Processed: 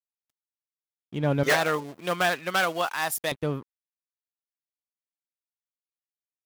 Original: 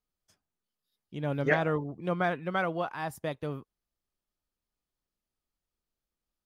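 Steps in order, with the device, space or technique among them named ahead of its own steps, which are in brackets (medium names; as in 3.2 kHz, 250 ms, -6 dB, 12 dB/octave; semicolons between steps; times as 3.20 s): early transistor amplifier (crossover distortion -56 dBFS; slew-rate limiter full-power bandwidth 55 Hz); 1.43–3.32 s: tilt EQ +4.5 dB/octave; trim +7.5 dB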